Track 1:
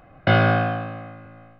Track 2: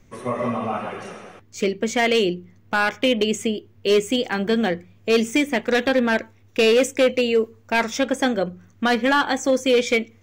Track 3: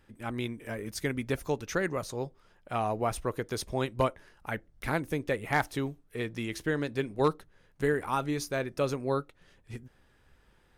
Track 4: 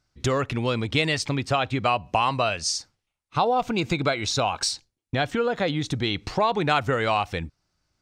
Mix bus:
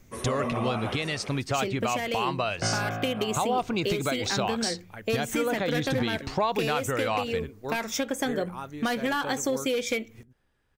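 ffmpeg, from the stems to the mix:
-filter_complex "[0:a]adelay=2350,volume=-10.5dB[a];[1:a]equalizer=f=13k:w=0.8:g=14,acompressor=threshold=-22dB:ratio=10,volume=-2dB[b];[2:a]adelay=450,volume=-8.5dB[c];[3:a]volume=-2dB,asplit=2[d][e];[e]apad=whole_len=494905[f];[c][f]sidechaincompress=threshold=-29dB:ratio=8:attack=6.6:release=162[g];[a][b][g][d]amix=inputs=4:normalize=0,alimiter=limit=-16dB:level=0:latency=1:release=269"

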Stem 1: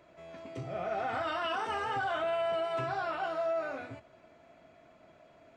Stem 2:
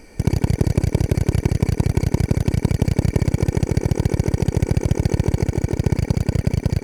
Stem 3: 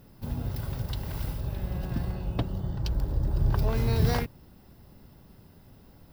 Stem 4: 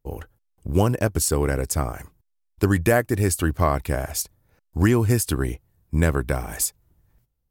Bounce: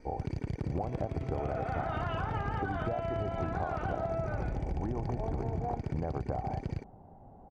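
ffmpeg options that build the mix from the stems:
-filter_complex "[0:a]lowpass=3k,adelay=650,volume=2dB[a];[1:a]asoftclip=type=tanh:threshold=-11.5dB,volume=-11.5dB[b];[2:a]adelay=1550,volume=-2dB[c];[3:a]volume=-6.5dB[d];[c][d]amix=inputs=2:normalize=0,lowpass=f=770:t=q:w=6.7,acompressor=threshold=-25dB:ratio=6,volume=0dB[e];[a][b][e]amix=inputs=3:normalize=0,lowpass=4.1k,adynamicequalizer=threshold=0.00126:dfrequency=2800:dqfactor=5.7:tfrequency=2800:tqfactor=5.7:attack=5:release=100:ratio=0.375:range=2:mode=cutabove:tftype=bell,acompressor=threshold=-30dB:ratio=6"

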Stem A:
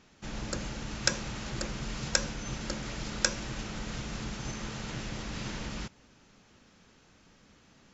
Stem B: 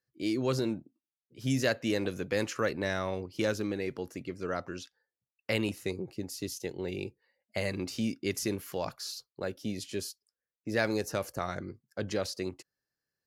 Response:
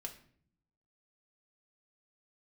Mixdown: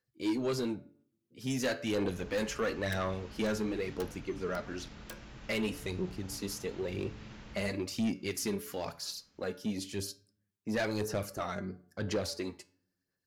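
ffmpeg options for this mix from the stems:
-filter_complex "[0:a]acrossover=split=4300[a][b];[b]acompressor=threshold=-58dB:ratio=4:attack=1:release=60[c];[a][c]amix=inputs=2:normalize=0,equalizer=f=69:w=1.9:g=6,aeval=exprs='(mod(14.1*val(0)+1,2)-1)/14.1':c=same,adelay=1850,volume=-7.5dB[d];[1:a]bandreject=f=143.7:t=h:w=4,bandreject=f=287.4:t=h:w=4,bandreject=f=431.1:t=h:w=4,bandreject=f=574.8:t=h:w=4,bandreject=f=718.5:t=h:w=4,bandreject=f=862.2:t=h:w=4,bandreject=f=1.0059k:t=h:w=4,bandreject=f=1.1496k:t=h:w=4,bandreject=f=1.2933k:t=h:w=4,bandreject=f=1.437k:t=h:w=4,bandreject=f=1.5807k:t=h:w=4,bandreject=f=1.7244k:t=h:w=4,aphaser=in_gain=1:out_gain=1:delay=5:decay=0.5:speed=0.99:type=sinusoidal,volume=2.5dB,asplit=2[e][f];[f]volume=-14.5dB[g];[2:a]atrim=start_sample=2205[h];[g][h]afir=irnorm=-1:irlink=0[i];[d][e][i]amix=inputs=3:normalize=0,flanger=delay=9.3:depth=2.5:regen=82:speed=0.28:shape=sinusoidal,asoftclip=type=tanh:threshold=-25.5dB"

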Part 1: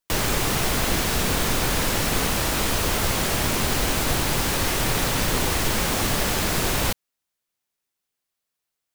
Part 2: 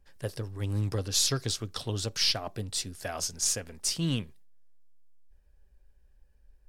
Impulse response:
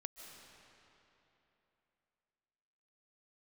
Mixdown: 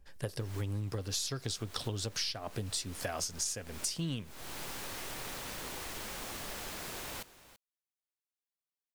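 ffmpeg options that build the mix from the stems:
-filter_complex "[0:a]lowshelf=f=240:g=-9,adelay=300,volume=-17.5dB,asplit=2[a][b];[b]volume=-16.5dB[c];[1:a]volume=3dB,asplit=2[d][e];[e]apad=whole_len=407661[f];[a][f]sidechaincompress=threshold=-38dB:ratio=10:attack=21:release=326[g];[c]aecho=0:1:334:1[h];[g][d][h]amix=inputs=3:normalize=0,acompressor=threshold=-32dB:ratio=16"

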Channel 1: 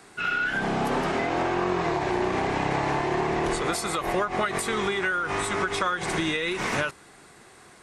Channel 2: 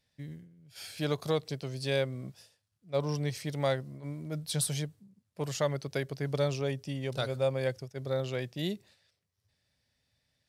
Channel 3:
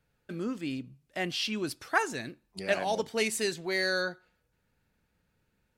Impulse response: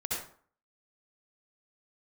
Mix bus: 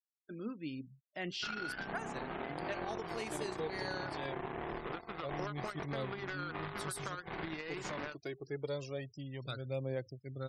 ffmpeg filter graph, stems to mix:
-filter_complex "[0:a]lowpass=2.2k,acompressor=threshold=-35dB:ratio=2.5,aeval=exprs='0.1*(cos(1*acos(clip(val(0)/0.1,-1,1)))-cos(1*PI/2))+0.0112*(cos(7*acos(clip(val(0)/0.1,-1,1)))-cos(7*PI/2))':c=same,adelay=1250,volume=-1dB[a];[1:a]equalizer=f=310:t=o:w=0.39:g=7.5,aphaser=in_gain=1:out_gain=1:delay=3.1:decay=0.56:speed=0.26:type=triangular,adelay=2300,volume=-10dB[b];[2:a]flanger=delay=1.1:depth=6.6:regen=72:speed=0.54:shape=sinusoidal,volume=-4dB[c];[a][b][c]amix=inputs=3:normalize=0,afftfilt=real='re*gte(hypot(re,im),0.00251)':imag='im*gte(hypot(re,im),0.00251)':win_size=1024:overlap=0.75,alimiter=level_in=3.5dB:limit=-24dB:level=0:latency=1:release=414,volume=-3.5dB"

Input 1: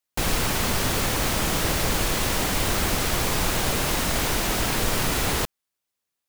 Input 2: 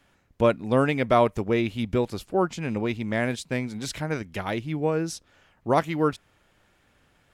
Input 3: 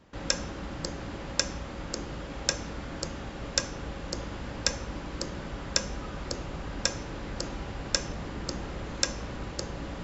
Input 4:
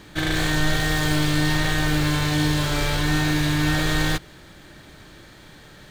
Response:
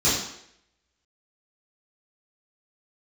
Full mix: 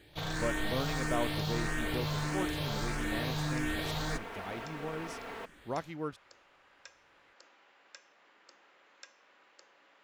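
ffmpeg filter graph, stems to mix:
-filter_complex "[0:a]aecho=1:1:4.4:0.65,volume=-14.5dB[a];[1:a]volume=-14.5dB[b];[2:a]aderivative,volume=-3.5dB[c];[3:a]asplit=2[d][e];[e]afreqshift=1.6[f];[d][f]amix=inputs=2:normalize=1,volume=-10.5dB[g];[a][c]amix=inputs=2:normalize=0,acrossover=split=260 2700:gain=0.112 1 0.0708[h][i][j];[h][i][j]amix=inputs=3:normalize=0,alimiter=level_in=8.5dB:limit=-24dB:level=0:latency=1:release=308,volume=-8.5dB,volume=0dB[k];[b][g][k]amix=inputs=3:normalize=0"

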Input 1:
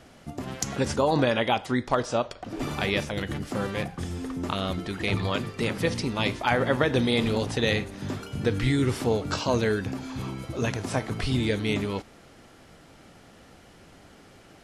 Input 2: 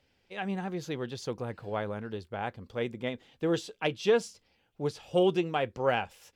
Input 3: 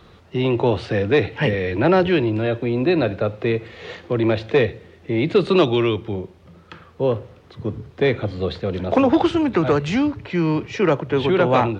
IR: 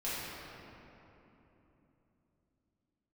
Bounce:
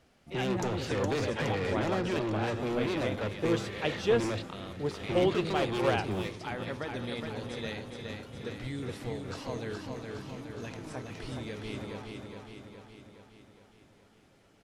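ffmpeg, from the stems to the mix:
-filter_complex "[0:a]volume=-14.5dB,asplit=2[a][b];[b]volume=-4.5dB[c];[1:a]volume=-2dB,asplit=2[d][e];[2:a]alimiter=limit=-13.5dB:level=0:latency=1:release=352,asoftclip=type=tanh:threshold=-28.5dB,volume=-1.5dB,asplit=2[f][g];[g]volume=-16dB[h];[e]apad=whole_len=520057[i];[f][i]sidechaingate=range=-33dB:threshold=-55dB:ratio=16:detection=peak[j];[c][h]amix=inputs=2:normalize=0,aecho=0:1:416|832|1248|1664|2080|2496|2912|3328|3744:1|0.58|0.336|0.195|0.113|0.0656|0.0381|0.0221|0.0128[k];[a][d][j][k]amix=inputs=4:normalize=0"

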